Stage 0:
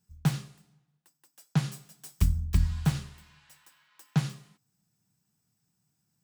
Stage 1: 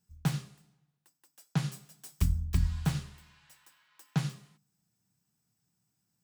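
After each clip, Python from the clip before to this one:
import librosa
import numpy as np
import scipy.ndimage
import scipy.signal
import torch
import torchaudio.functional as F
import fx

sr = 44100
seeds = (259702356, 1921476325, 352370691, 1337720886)

y = fx.hum_notches(x, sr, base_hz=50, count=4)
y = F.gain(torch.from_numpy(y), -2.0).numpy()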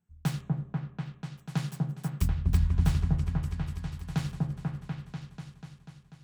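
y = fx.wiener(x, sr, points=9)
y = fx.echo_opening(y, sr, ms=245, hz=750, octaves=1, feedback_pct=70, wet_db=0)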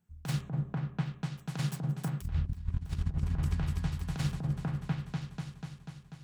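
y = fx.over_compress(x, sr, threshold_db=-30.0, ratio=-0.5)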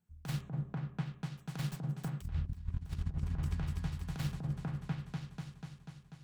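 y = fx.tracing_dist(x, sr, depth_ms=0.094)
y = F.gain(torch.from_numpy(y), -4.5).numpy()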